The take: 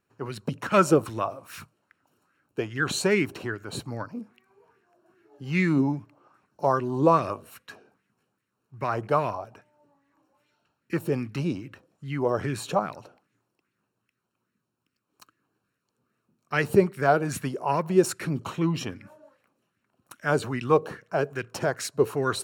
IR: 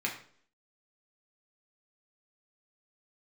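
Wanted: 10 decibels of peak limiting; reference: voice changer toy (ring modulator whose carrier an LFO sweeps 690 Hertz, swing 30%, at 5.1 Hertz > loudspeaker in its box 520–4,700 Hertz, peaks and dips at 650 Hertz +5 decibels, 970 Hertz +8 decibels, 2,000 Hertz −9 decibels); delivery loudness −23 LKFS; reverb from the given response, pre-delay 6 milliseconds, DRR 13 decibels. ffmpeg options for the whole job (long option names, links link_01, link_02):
-filter_complex "[0:a]alimiter=limit=-17dB:level=0:latency=1,asplit=2[link_01][link_02];[1:a]atrim=start_sample=2205,adelay=6[link_03];[link_02][link_03]afir=irnorm=-1:irlink=0,volume=-19dB[link_04];[link_01][link_04]amix=inputs=2:normalize=0,aeval=exprs='val(0)*sin(2*PI*690*n/s+690*0.3/5.1*sin(2*PI*5.1*n/s))':channel_layout=same,highpass=520,equalizer=frequency=650:width_type=q:width=4:gain=5,equalizer=frequency=970:width_type=q:width=4:gain=8,equalizer=frequency=2000:width_type=q:width=4:gain=-9,lowpass=frequency=4700:width=0.5412,lowpass=frequency=4700:width=1.3066,volume=7.5dB"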